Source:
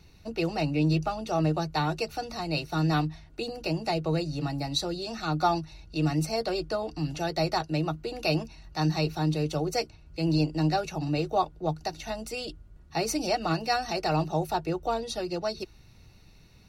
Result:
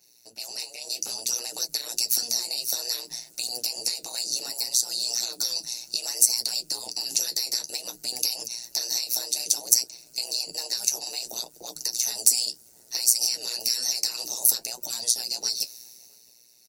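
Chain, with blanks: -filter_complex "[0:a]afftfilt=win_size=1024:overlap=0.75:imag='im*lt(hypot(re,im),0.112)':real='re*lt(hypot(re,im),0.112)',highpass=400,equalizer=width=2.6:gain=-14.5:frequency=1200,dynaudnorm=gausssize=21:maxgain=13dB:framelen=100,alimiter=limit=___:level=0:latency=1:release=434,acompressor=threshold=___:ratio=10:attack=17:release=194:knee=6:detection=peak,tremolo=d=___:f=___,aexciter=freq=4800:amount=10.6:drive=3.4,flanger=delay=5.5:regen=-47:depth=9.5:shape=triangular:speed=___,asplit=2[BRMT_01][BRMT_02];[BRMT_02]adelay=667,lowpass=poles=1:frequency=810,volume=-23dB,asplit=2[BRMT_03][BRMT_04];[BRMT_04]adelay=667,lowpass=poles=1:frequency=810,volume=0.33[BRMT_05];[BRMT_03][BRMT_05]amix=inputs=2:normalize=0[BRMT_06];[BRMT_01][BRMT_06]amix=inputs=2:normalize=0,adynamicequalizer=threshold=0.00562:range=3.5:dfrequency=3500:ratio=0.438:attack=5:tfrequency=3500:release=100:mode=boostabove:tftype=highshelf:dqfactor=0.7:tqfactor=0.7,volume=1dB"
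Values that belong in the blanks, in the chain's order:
-11.5dB, -34dB, 0.919, 120, 0.6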